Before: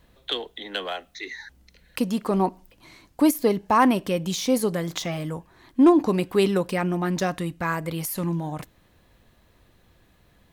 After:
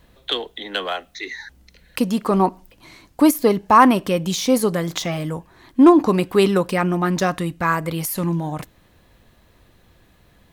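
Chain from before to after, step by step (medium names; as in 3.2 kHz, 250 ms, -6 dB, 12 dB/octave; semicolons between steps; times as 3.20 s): dynamic bell 1.2 kHz, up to +5 dB, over -39 dBFS, Q 2.6; trim +4.5 dB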